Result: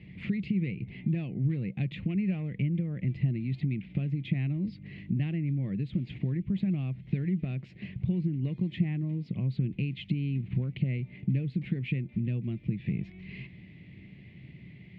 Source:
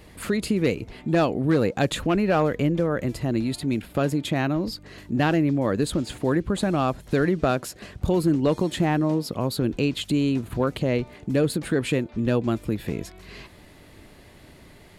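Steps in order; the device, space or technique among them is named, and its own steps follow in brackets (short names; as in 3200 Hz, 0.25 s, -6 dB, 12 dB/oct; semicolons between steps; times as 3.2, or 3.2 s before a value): bass amplifier (compressor 5:1, threshold -29 dBFS, peak gain reduction 12 dB; speaker cabinet 86–2400 Hz, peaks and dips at 130 Hz +9 dB, 190 Hz +10 dB, 350 Hz +4 dB, 720 Hz +3 dB, 1100 Hz +7 dB, 1600 Hz -7 dB); EQ curve 160 Hz 0 dB, 1200 Hz -28 dB, 2100 Hz +3 dB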